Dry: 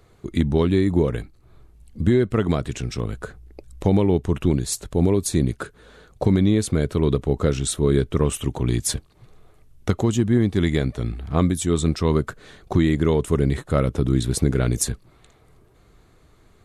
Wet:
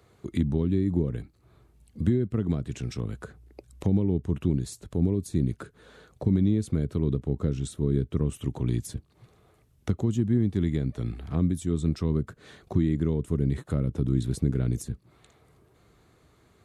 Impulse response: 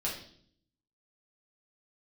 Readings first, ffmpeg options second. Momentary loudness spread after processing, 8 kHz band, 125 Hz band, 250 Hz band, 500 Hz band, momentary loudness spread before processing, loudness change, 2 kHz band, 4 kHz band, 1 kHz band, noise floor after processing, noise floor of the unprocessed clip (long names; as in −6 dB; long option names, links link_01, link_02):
10 LU, −16.0 dB, −4.5 dB, −5.5 dB, −10.5 dB, 9 LU, −6.0 dB, −14.0 dB, −14.5 dB, −15.0 dB, −63 dBFS, −55 dBFS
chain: -filter_complex "[0:a]highpass=69,acrossover=split=330[link_01][link_02];[link_02]acompressor=threshold=-36dB:ratio=10[link_03];[link_01][link_03]amix=inputs=2:normalize=0,volume=-3.5dB"